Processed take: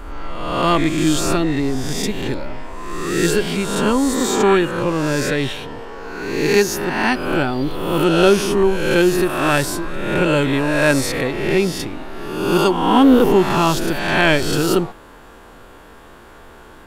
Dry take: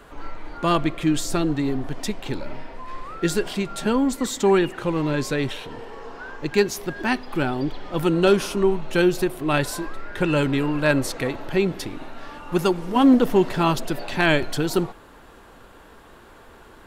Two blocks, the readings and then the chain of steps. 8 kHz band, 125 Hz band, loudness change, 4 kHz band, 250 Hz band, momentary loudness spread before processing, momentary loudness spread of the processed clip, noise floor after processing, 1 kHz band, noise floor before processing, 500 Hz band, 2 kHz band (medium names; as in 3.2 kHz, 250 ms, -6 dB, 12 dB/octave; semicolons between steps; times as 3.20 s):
+8.0 dB, +4.0 dB, +5.0 dB, +7.0 dB, +4.5 dB, 18 LU, 14 LU, -42 dBFS, +6.5 dB, -48 dBFS, +5.5 dB, +6.5 dB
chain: reverse spectral sustain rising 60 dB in 1.13 s; band-stop 4 kHz, Q 26; trim +2.5 dB